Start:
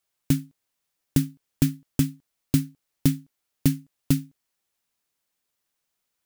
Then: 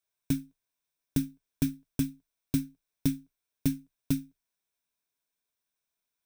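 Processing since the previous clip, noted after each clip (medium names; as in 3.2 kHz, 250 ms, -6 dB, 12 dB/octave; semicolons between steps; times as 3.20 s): rippled EQ curve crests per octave 1.6, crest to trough 7 dB; trim -8 dB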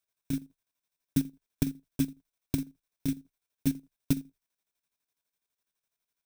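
square tremolo 12 Hz, depth 60%, duty 55%; trim +2 dB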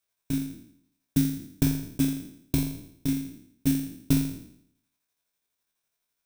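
spectral sustain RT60 0.68 s; trim +2 dB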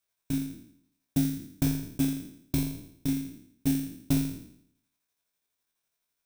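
saturation -14.5 dBFS, distortion -18 dB; trim -1 dB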